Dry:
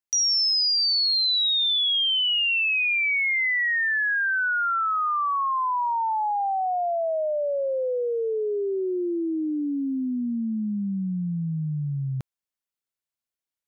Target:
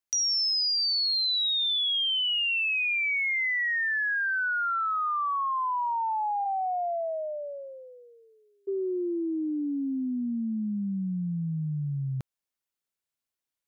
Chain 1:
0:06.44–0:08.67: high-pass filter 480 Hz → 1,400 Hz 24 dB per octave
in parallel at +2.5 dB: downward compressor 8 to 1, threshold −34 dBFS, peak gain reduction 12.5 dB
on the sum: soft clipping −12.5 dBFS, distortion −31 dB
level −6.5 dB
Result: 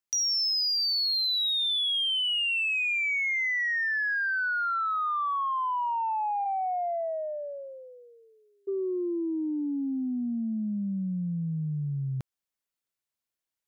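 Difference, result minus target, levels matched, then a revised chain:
soft clipping: distortion +15 dB
0:06.44–0:08.67: high-pass filter 480 Hz → 1,400 Hz 24 dB per octave
in parallel at +2.5 dB: downward compressor 8 to 1, threshold −34 dBFS, peak gain reduction 12.5 dB
on the sum: soft clipping −4.5 dBFS, distortion −46 dB
level −6.5 dB

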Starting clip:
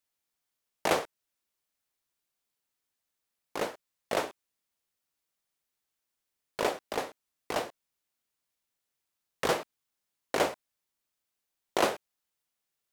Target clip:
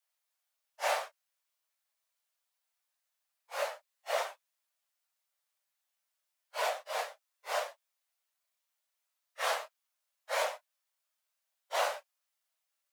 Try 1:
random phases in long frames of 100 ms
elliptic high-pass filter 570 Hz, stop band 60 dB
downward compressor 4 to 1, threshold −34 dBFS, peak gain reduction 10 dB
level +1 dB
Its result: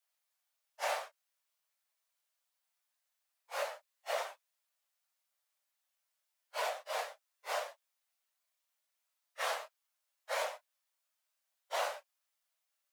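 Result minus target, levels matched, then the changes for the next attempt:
downward compressor: peak gain reduction +4.5 dB
change: downward compressor 4 to 1, threshold −28 dBFS, peak gain reduction 5.5 dB

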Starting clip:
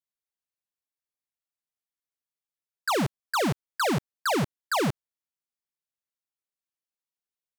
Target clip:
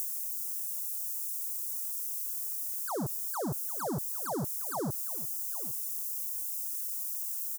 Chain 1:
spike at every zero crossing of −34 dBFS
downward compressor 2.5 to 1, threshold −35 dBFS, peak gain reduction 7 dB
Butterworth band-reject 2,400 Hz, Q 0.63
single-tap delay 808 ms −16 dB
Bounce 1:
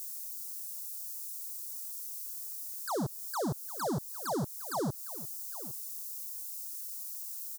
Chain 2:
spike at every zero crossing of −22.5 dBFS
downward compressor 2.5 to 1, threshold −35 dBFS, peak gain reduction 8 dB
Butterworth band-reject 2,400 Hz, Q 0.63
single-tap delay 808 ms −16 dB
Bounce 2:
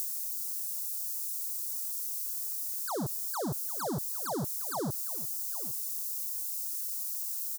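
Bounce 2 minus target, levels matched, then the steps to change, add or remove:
4,000 Hz band +5.0 dB
add after Butterworth band-reject: parametric band 3,900 Hz −9.5 dB 0.75 octaves

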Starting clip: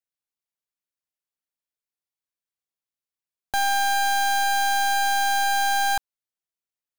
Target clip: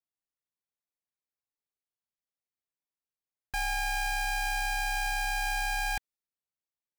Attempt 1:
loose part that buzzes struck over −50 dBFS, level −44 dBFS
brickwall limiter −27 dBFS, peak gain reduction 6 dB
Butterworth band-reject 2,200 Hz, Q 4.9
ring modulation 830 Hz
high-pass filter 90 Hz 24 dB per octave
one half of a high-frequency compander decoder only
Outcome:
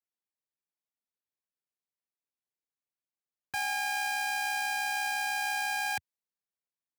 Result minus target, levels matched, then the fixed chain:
125 Hz band −18.5 dB
loose part that buzzes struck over −50 dBFS, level −44 dBFS
brickwall limiter −27 dBFS, peak gain reduction 6 dB
Butterworth band-reject 2,200 Hz, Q 4.9
ring modulation 830 Hz
one half of a high-frequency compander decoder only

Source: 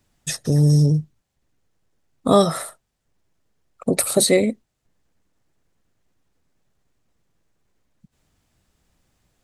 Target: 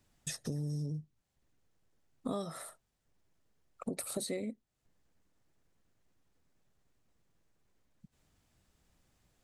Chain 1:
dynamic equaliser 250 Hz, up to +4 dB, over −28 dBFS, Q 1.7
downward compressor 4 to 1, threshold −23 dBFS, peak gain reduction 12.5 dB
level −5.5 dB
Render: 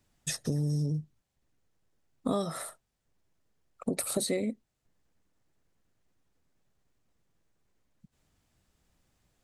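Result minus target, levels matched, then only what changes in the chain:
downward compressor: peak gain reduction −7 dB
change: downward compressor 4 to 1, threshold −32.5 dBFS, peak gain reduction 20 dB

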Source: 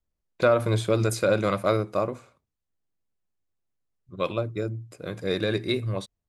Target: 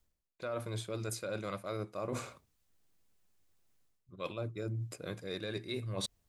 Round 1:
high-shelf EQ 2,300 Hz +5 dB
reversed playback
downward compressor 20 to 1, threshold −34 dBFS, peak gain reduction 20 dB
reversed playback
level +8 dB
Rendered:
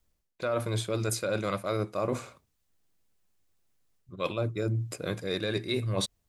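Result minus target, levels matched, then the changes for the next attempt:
downward compressor: peak gain reduction −8.5 dB
change: downward compressor 20 to 1, threshold −43 dBFS, peak gain reduction 28.5 dB

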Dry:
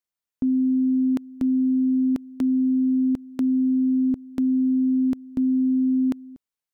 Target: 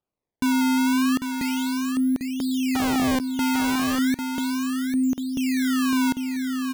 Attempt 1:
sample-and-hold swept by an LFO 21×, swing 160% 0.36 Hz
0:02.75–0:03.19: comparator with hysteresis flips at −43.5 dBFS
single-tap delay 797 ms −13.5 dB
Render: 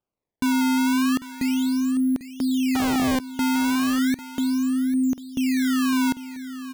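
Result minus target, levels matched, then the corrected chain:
echo-to-direct −7.5 dB
sample-and-hold swept by an LFO 21×, swing 160% 0.36 Hz
0:02.75–0:03.19: comparator with hysteresis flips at −43.5 dBFS
single-tap delay 797 ms −6 dB

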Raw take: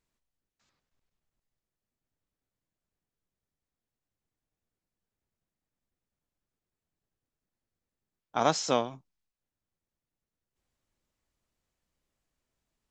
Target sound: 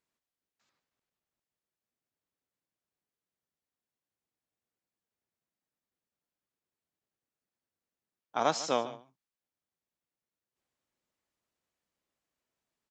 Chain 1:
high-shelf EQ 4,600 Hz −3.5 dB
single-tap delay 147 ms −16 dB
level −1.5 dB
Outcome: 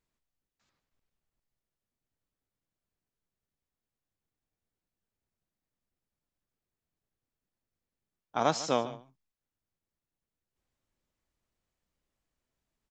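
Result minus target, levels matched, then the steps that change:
250 Hz band +2.5 dB
add first: high-pass filter 290 Hz 6 dB per octave

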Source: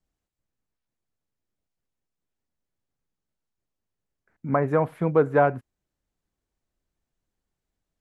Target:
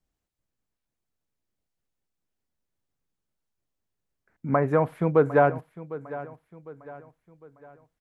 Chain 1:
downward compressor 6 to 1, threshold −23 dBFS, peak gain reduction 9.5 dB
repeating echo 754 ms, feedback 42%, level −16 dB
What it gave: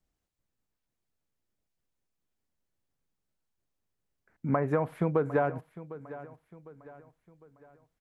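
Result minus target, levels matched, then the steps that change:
downward compressor: peak gain reduction +9.5 dB
remove: downward compressor 6 to 1, threshold −23 dBFS, peak gain reduction 9.5 dB

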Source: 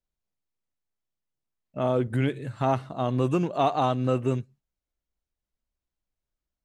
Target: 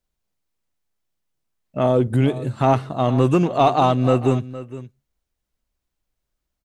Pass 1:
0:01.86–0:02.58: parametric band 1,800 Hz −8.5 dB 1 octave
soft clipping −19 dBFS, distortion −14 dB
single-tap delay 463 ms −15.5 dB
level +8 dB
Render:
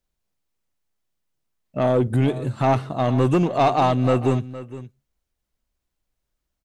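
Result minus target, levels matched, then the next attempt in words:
soft clipping: distortion +12 dB
0:01.86–0:02.58: parametric band 1,800 Hz −8.5 dB 1 octave
soft clipping −11 dBFS, distortion −26 dB
single-tap delay 463 ms −15.5 dB
level +8 dB

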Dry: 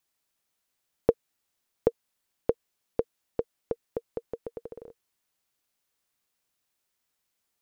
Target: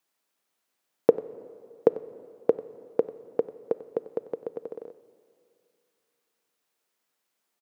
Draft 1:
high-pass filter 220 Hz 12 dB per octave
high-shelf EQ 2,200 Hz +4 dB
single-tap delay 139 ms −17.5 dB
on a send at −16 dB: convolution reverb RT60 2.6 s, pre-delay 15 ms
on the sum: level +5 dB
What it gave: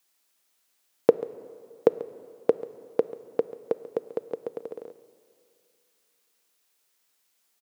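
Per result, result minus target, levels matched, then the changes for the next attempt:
echo 45 ms late; 4,000 Hz band +7.0 dB
change: single-tap delay 94 ms −17.5 dB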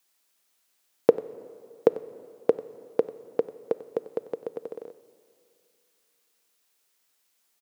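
4,000 Hz band +7.0 dB
change: high-shelf EQ 2,200 Hz −6 dB

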